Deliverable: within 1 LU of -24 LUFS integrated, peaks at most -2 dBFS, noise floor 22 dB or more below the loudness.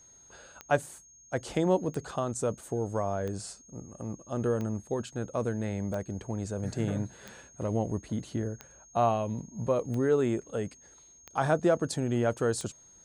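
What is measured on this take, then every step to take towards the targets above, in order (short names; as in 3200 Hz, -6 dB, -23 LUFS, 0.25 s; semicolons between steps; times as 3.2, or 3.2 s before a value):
clicks 10; steady tone 6500 Hz; tone level -54 dBFS; loudness -31.5 LUFS; peak -13.0 dBFS; loudness target -24.0 LUFS
-> de-click; notch 6500 Hz, Q 30; gain +7.5 dB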